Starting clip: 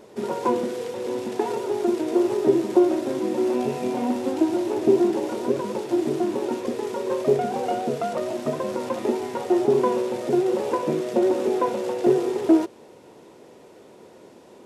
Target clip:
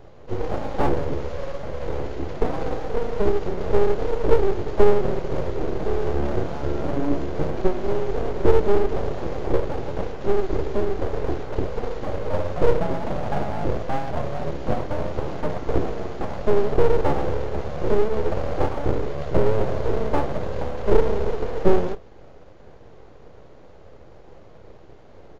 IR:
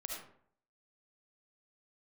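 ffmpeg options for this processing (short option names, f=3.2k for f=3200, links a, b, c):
-filter_complex "[0:a]highshelf=f=2.9k:g=-11.5,asetrate=25442,aresample=44100,highpass=78,asplit=2[a][b];[b]adelay=30,volume=-12dB[c];[a][c]amix=inputs=2:normalize=0,acrossover=split=770[d][e];[d]aeval=exprs='abs(val(0))':c=same[f];[f][e]amix=inputs=2:normalize=0,volume=5dB"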